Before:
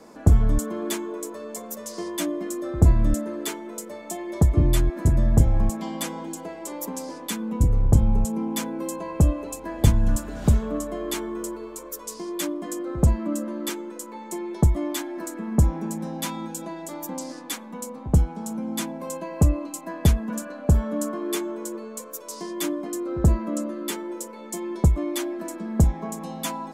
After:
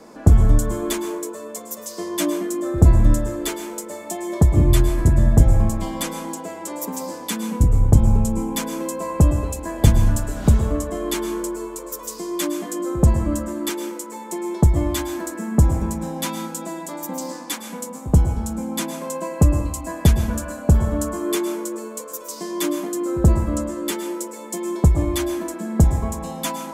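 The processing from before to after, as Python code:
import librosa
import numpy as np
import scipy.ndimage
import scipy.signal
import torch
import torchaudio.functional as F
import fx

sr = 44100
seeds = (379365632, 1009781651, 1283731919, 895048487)

y = fx.rev_plate(x, sr, seeds[0], rt60_s=0.7, hf_ratio=0.7, predelay_ms=100, drr_db=7.5)
y = fx.band_widen(y, sr, depth_pct=40, at=(0.93, 2.78))
y = y * 10.0 ** (3.5 / 20.0)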